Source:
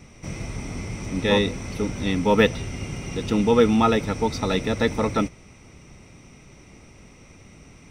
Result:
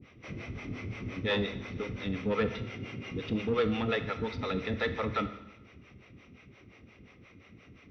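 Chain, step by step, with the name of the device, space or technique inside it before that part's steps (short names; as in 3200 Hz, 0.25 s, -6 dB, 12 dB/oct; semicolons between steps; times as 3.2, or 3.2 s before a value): 2.62–3.1 HPF 120 Hz; dynamic EQ 280 Hz, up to -5 dB, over -32 dBFS, Q 1.4; guitar amplifier with harmonic tremolo (harmonic tremolo 5.7 Hz, depth 100%, crossover 430 Hz; soft clip -21 dBFS, distortion -13 dB; speaker cabinet 81–3700 Hz, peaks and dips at 160 Hz -7 dB, 630 Hz -4 dB, 890 Hz -9 dB); Schroeder reverb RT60 0.94 s, combs from 25 ms, DRR 10 dB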